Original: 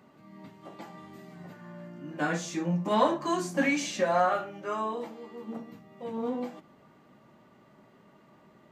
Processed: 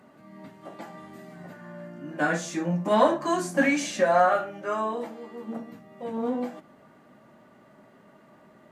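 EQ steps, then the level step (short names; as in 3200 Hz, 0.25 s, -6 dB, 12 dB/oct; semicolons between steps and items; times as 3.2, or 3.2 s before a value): fifteen-band EQ 250 Hz +4 dB, 630 Hz +6 dB, 1600 Hz +6 dB, 10000 Hz +8 dB; 0.0 dB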